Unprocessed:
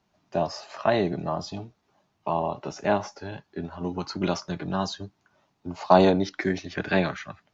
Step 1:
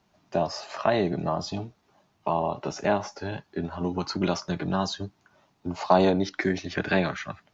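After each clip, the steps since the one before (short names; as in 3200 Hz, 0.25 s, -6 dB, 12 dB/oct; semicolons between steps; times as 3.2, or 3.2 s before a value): compressor 1.5:1, threshold -31 dBFS, peak gain reduction 7.5 dB; gain +4 dB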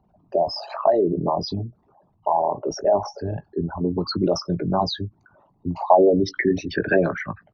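formant sharpening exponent 3; doubler 18 ms -12 dB; gain +5 dB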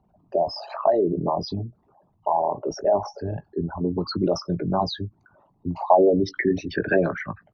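high shelf 5600 Hz -5.5 dB; gain -1.5 dB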